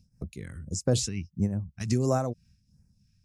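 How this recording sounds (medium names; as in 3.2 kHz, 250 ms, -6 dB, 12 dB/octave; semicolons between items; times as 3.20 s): phasing stages 2, 1.5 Hz, lowest notch 510–3100 Hz; random flutter of the level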